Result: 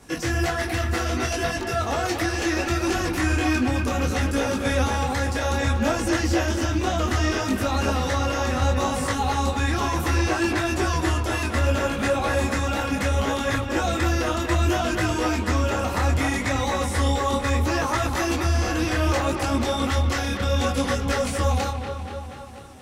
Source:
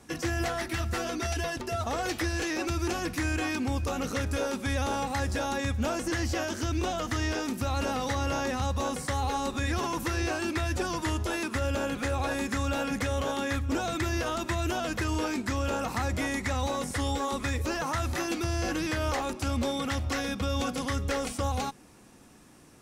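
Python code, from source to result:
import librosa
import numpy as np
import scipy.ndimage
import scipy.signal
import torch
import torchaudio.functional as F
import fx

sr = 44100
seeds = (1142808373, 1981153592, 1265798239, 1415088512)

p1 = x + fx.echo_wet_lowpass(x, sr, ms=240, feedback_pct=64, hz=3400.0, wet_db=-6.5, dry=0)
p2 = fx.detune_double(p1, sr, cents=23)
y = p2 * librosa.db_to_amplitude(9.0)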